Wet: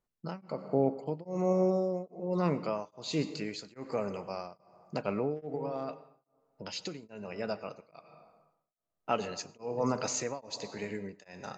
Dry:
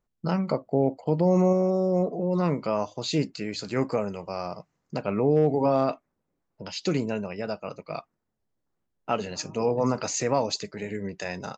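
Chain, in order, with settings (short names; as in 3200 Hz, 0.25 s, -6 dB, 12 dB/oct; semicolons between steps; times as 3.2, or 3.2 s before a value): low shelf 160 Hz -5.5 dB; 5.56–7.03 compressor 6:1, threshold -30 dBFS, peak gain reduction 10.5 dB; on a send at -13.5 dB: reverb RT60 1.3 s, pre-delay 82 ms; on the sum: beating tremolo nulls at 1.2 Hz; gain -3 dB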